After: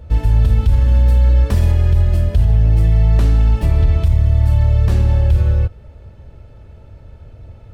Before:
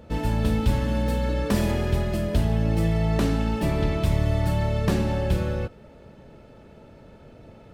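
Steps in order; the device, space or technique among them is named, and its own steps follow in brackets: car stereo with a boomy subwoofer (resonant low shelf 130 Hz +14 dB, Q 1.5; limiter -5.5 dBFS, peak gain reduction 10 dB)

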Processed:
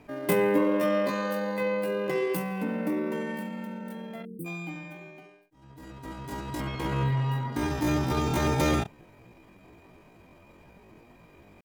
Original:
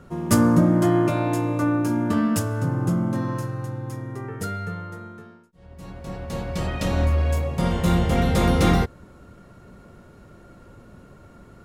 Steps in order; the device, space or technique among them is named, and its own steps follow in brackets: 4.24–4.48 spectral delete 300–4700 Hz; 6.61–7.55 resonant high shelf 2200 Hz -7 dB, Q 1.5; chipmunk voice (pitch shift +9.5 st); gain -6.5 dB

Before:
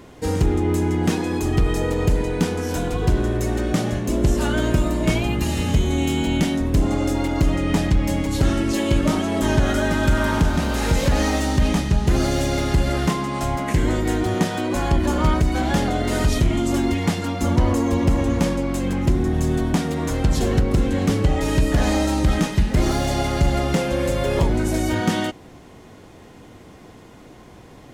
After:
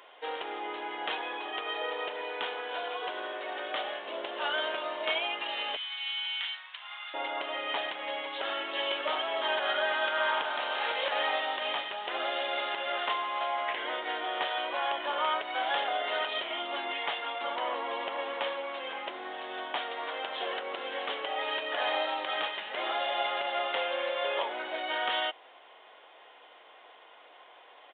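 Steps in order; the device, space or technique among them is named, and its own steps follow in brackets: 5.76–7.14 Bessel high-pass 1700 Hz, order 8; musical greeting card (downsampling 8000 Hz; HPF 600 Hz 24 dB/oct; bell 3100 Hz +6 dB 0.31 oct); gain -3.5 dB

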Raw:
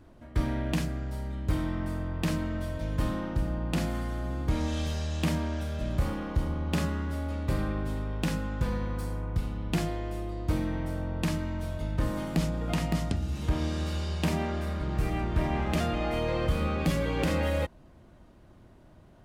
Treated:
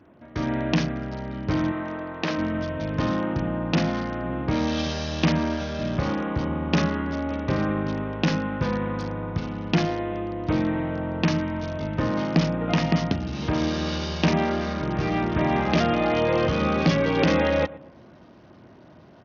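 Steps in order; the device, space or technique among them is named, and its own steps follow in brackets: 1.71–2.38 tone controls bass -13 dB, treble -6 dB; tape echo 0.114 s, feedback 41%, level -17 dB, low-pass 1400 Hz; Bluetooth headset (HPF 140 Hz 12 dB/oct; AGC gain up to 5 dB; downsampling 16000 Hz; gain +3.5 dB; SBC 64 kbps 48000 Hz)

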